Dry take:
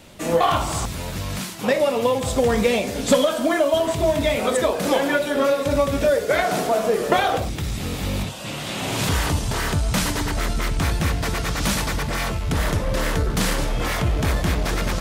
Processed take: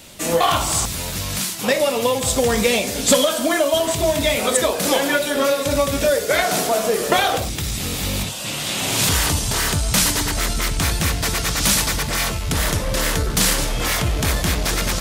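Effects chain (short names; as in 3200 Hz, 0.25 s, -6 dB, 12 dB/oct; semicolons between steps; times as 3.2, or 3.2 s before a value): high shelf 3000 Hz +11.5 dB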